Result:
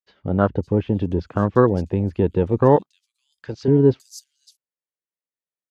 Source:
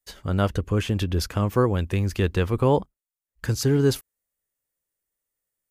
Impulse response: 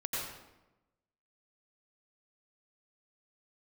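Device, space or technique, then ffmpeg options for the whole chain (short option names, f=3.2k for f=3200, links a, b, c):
over-cleaned archive recording: -filter_complex "[0:a]asettb=1/sr,asplit=3[a][b][c];[a]atrim=end=2.764[d];[b]atrim=start=2.76:end=3.68,asetpts=PTS-STARTPTS,afade=t=in:d=0.004:c=qsin,afade=t=out:st=0.916:d=0.004:c=qsin,aemphasis=mode=production:type=riaa[e];[c]atrim=start=3.676[f];[d][e]acrossfade=d=0.004:c1=hsin:c2=qsin[g];[g][f]acrossfade=d=0.004:c1=qsin:c2=hsin,highpass=130,lowpass=5.1k,acrossover=split=4600[h][i];[i]adelay=560[j];[h][j]amix=inputs=2:normalize=0,afwtdn=0.0355,volume=6dB"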